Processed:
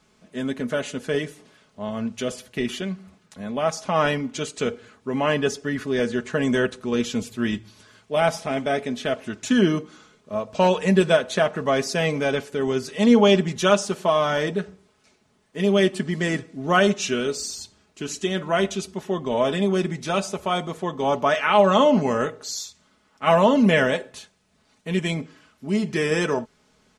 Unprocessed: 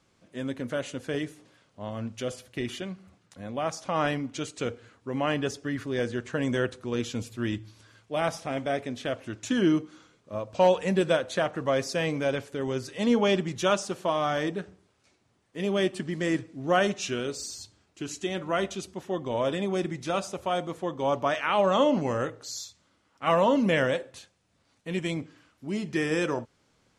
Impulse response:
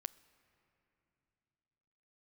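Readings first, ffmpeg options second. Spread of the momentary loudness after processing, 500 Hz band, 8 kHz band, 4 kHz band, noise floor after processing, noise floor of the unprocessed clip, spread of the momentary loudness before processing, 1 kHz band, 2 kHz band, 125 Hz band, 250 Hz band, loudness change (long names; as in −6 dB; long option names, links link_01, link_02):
14 LU, +5.5 dB, +6.0 dB, +6.5 dB, −63 dBFS, −69 dBFS, 14 LU, +5.5 dB, +6.5 dB, +5.5 dB, +6.0 dB, +6.0 dB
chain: -af "aecho=1:1:4.7:0.56,volume=5dB"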